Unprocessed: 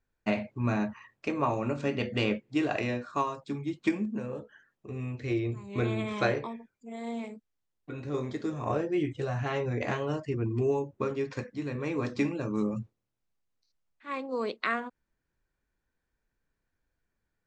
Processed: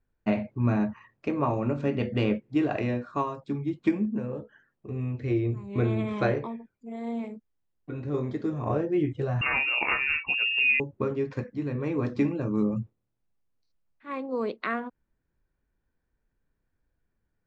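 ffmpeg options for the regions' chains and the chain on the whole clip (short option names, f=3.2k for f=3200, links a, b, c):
-filter_complex "[0:a]asettb=1/sr,asplit=3[a][b][c];[a]atrim=end=9.414[d];[b]atrim=start=9.41:end=10.8,asetpts=PTS-STARTPTS,afade=t=in:d=0.004:c=qsin,afade=t=out:st=1.386:d=0.004:c=qsin,acontrast=87,lowpass=f=2.5k:t=q:w=0.5098,lowpass=f=2.5k:t=q:w=0.6013,lowpass=f=2.5k:t=q:w=0.9,lowpass=f=2.5k:t=q:w=2.563,afreqshift=-2900[e];[c]atrim=start=10.796[f];[d][e]acrossfade=d=0.004:c1=hsin:c2=qsin[g];[g][f]acrossfade=d=0.004:c1=qsin:c2=hsin,lowpass=f=2.2k:p=1,lowshelf=f=420:g=5.5"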